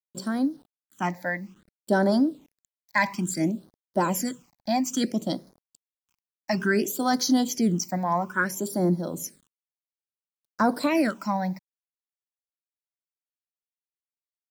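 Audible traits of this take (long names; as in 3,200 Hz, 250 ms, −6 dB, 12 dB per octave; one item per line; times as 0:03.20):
a quantiser's noise floor 10 bits, dither none
phaser sweep stages 8, 0.59 Hz, lowest notch 380–2,700 Hz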